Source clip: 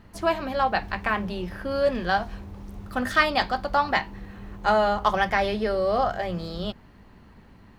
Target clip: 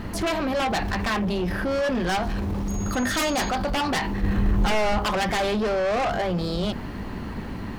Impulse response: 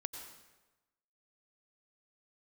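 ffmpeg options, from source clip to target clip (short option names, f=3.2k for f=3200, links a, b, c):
-filter_complex "[0:a]aeval=exprs='0.668*sin(PI/2*6.31*val(0)/0.668)':c=same,equalizer=f=290:t=o:w=0.98:g=3.5,asoftclip=type=tanh:threshold=-8dB,alimiter=limit=-18.5dB:level=0:latency=1:release=11,asettb=1/sr,asplit=3[a][b][c];[a]atrim=end=2.684[d];[b]atrim=start=2.68:end=3.5,asetpts=PTS-STARTPTS,afade=t=in:d=0.004:c=qsin,afade=t=out:st=0.816:d=0.004:c=qsin,aeval=exprs='val(0)+0.0158*sin(2*PI*6600*n/s)':c=same[e];[c]atrim=start=3.496[f];[d][e]acrossfade=d=0.004:c1=hsin:c2=qsin[g];[g][f]acrossfade=d=0.004:c1=qsin:c2=hsin,asettb=1/sr,asplit=3[h][i][j];[h]atrim=end=4.234[k];[i]atrim=start=4.23:end=4.99,asetpts=PTS-STARTPTS,afade=t=in:d=0.004:c=qsin,afade=t=out:st=0.756:d=0.004:c=qsin,lowshelf=f=150:g=10[l];[j]atrim=start=4.986[m];[k][l]acrossfade=d=0.004:c1=hsin:c2=qsin[n];[n][m]acrossfade=d=0.004:c1=qsin:c2=hsin,volume=-2.5dB"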